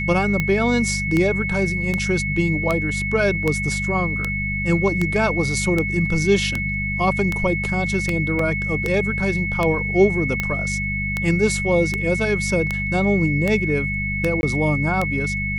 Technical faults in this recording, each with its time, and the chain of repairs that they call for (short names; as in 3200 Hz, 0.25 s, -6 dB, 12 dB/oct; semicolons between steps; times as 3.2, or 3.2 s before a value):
hum 50 Hz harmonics 4 -27 dBFS
tick 78 rpm -8 dBFS
tone 2200 Hz -24 dBFS
8.39 gap 3.4 ms
14.41–14.43 gap 21 ms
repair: de-click; de-hum 50 Hz, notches 4; notch 2200 Hz, Q 30; interpolate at 8.39, 3.4 ms; interpolate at 14.41, 21 ms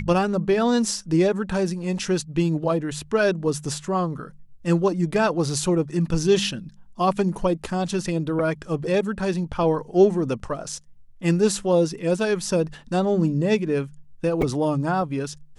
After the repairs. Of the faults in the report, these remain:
none